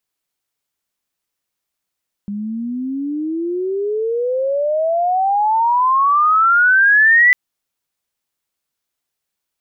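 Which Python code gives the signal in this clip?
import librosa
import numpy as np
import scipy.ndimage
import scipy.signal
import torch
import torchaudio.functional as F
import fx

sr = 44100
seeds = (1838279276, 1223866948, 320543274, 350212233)

y = fx.chirp(sr, length_s=5.05, from_hz=200.0, to_hz=2000.0, law='logarithmic', from_db=-21.5, to_db=-7.0)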